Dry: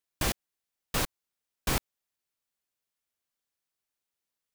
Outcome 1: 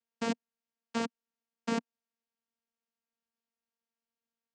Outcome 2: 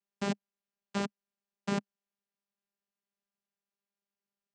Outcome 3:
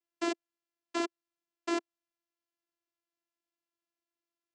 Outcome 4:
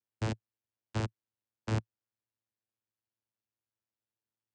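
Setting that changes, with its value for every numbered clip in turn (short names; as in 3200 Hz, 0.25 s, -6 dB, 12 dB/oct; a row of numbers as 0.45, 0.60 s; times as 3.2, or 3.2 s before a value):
vocoder, frequency: 230, 200, 340, 110 Hz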